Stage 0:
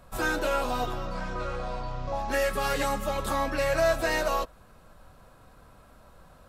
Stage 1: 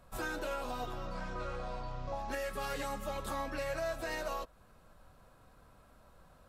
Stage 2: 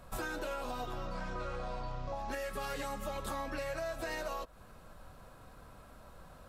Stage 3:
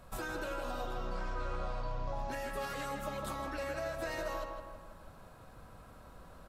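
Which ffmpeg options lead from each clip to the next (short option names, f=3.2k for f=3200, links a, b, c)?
-af "alimiter=limit=-21dB:level=0:latency=1:release=251,volume=-7dB"
-af "acompressor=threshold=-43dB:ratio=4,volume=6.5dB"
-filter_complex "[0:a]asplit=2[a][b];[b]adelay=160,lowpass=f=2.2k:p=1,volume=-3.5dB,asplit=2[c][d];[d]adelay=160,lowpass=f=2.2k:p=1,volume=0.54,asplit=2[e][f];[f]adelay=160,lowpass=f=2.2k:p=1,volume=0.54,asplit=2[g][h];[h]adelay=160,lowpass=f=2.2k:p=1,volume=0.54,asplit=2[i][j];[j]adelay=160,lowpass=f=2.2k:p=1,volume=0.54,asplit=2[k][l];[l]adelay=160,lowpass=f=2.2k:p=1,volume=0.54,asplit=2[m][n];[n]adelay=160,lowpass=f=2.2k:p=1,volume=0.54[o];[a][c][e][g][i][k][m][o]amix=inputs=8:normalize=0,volume=-1.5dB"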